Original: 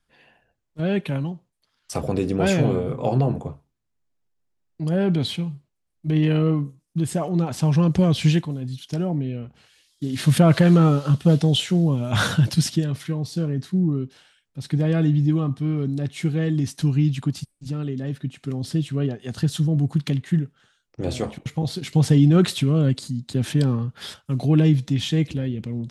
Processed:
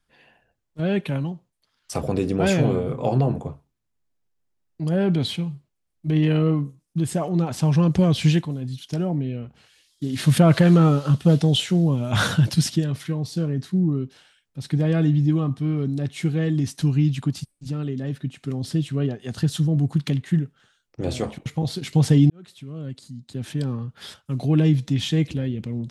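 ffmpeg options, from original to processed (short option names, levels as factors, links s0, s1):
-filter_complex "[0:a]asplit=2[s0][s1];[s0]atrim=end=22.3,asetpts=PTS-STARTPTS,afade=t=out:st=22.296:d=0.004:c=hsin[s2];[s1]atrim=start=22.3,asetpts=PTS-STARTPTS,afade=t=in:d=2.68[s3];[s2][s3]concat=n=2:v=0:a=1"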